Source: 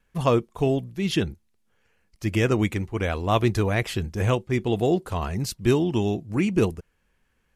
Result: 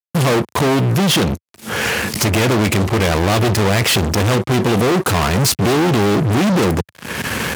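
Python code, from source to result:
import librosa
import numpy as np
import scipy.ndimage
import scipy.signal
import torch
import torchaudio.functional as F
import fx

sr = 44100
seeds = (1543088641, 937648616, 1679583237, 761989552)

y = fx.recorder_agc(x, sr, target_db=-14.0, rise_db_per_s=52.0, max_gain_db=30)
y = fx.fuzz(y, sr, gain_db=39.0, gate_db=-48.0)
y = scipy.signal.sosfilt(scipy.signal.butter(4, 89.0, 'highpass', fs=sr, output='sos'), y)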